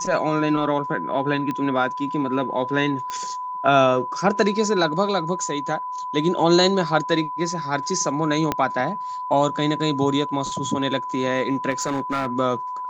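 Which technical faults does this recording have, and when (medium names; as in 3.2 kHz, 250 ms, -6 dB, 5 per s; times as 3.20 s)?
whine 1 kHz -27 dBFS
1.51 s: pop -15 dBFS
3.10 s: pop -15 dBFS
8.52 s: pop -7 dBFS
11.70–12.27 s: clipped -19 dBFS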